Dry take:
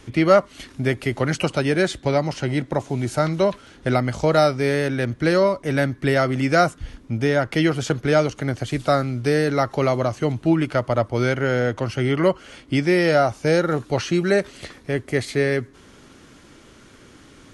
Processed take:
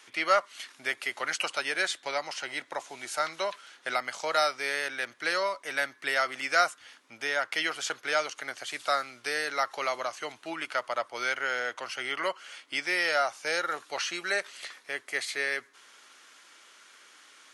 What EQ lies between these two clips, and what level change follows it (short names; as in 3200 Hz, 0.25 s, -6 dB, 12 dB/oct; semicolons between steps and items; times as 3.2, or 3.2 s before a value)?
HPF 1100 Hz 12 dB/oct; -1.5 dB